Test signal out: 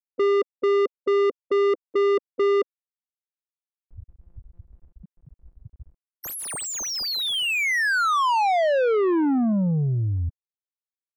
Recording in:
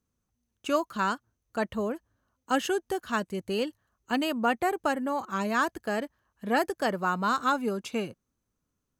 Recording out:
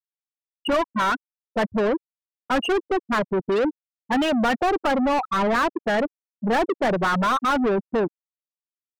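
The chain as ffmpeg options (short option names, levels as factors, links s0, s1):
-filter_complex "[0:a]afftfilt=real='re*gte(hypot(re,im),0.0891)':imag='im*gte(hypot(re,im),0.0891)':win_size=1024:overlap=0.75,asplit=2[s0][s1];[s1]highpass=f=720:p=1,volume=44.7,asoftclip=type=tanh:threshold=0.211[s2];[s0][s2]amix=inputs=2:normalize=0,lowpass=f=1900:p=1,volume=0.501"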